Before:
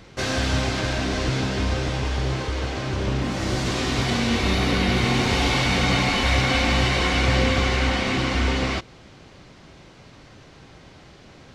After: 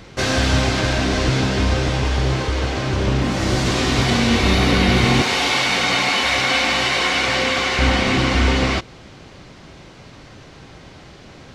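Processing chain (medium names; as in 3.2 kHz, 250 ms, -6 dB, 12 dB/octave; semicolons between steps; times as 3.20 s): 5.22–7.79 s: high-pass 640 Hz 6 dB/octave; trim +5.5 dB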